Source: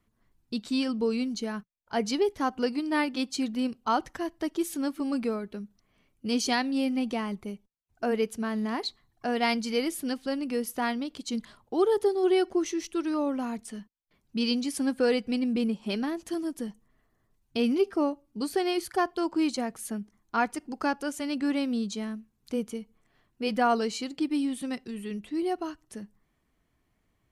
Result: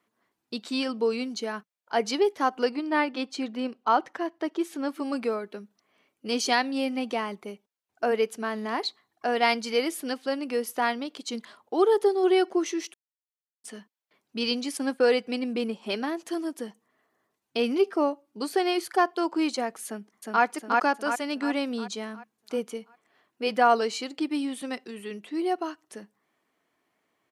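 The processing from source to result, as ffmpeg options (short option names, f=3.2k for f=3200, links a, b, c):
-filter_complex "[0:a]asettb=1/sr,asplit=3[a][b][c];[a]atrim=end=2.694[d];[b]atrim=start=2.69:end=4.89,asetpts=PTS-STARTPTS,afade=t=in:d=0.004:c=qsin,afade=t=out:st=2.196:d=0.004:c=qsin,lowpass=f=2.9k:p=1[e];[c]atrim=start=4.886[f];[d][e]acrossfade=d=0.004:c1=hsin:c2=qsin[g];[g][f]acrossfade=d=0.004:c1=qsin:c2=hsin,asettb=1/sr,asplit=3[h][i][j];[h]atrim=end=14.774[k];[i]atrim=start=14.77:end=15.18,asetpts=PTS-STARTPTS,afade=t=in:d=0.004:c=qsin,afade=t=out:st=0.406:d=0.004:c=qsin,agate=range=-33dB:threshold=-37dB:ratio=3:release=100:detection=peak[l];[j]atrim=start=15.176[m];[k][l]acrossfade=d=0.004:c1=hsin:c2=qsin[n];[n][m]acrossfade=d=0.004:c1=qsin:c2=hsin,asplit=2[o][p];[p]afade=t=in:st=19.86:d=0.01,afade=t=out:st=20.43:d=0.01,aecho=0:1:360|720|1080|1440|1800|2160|2520:0.841395|0.420698|0.210349|0.105174|0.0525872|0.0262936|0.0131468[q];[o][q]amix=inputs=2:normalize=0,asplit=3[r][s][t];[r]atrim=end=12.94,asetpts=PTS-STARTPTS,afade=t=out:st=12.936:d=0.004:c=hsin[u];[s]atrim=start=12.94:end=13.64,asetpts=PTS-STARTPTS,volume=0[v];[t]atrim=start=13.64,asetpts=PTS-STARTPTS,afade=t=in:d=0.004:c=hsin[w];[u][v][w]concat=n=3:v=0:a=1,highpass=380,highshelf=f=4.3k:g=-5.5,volume=5dB"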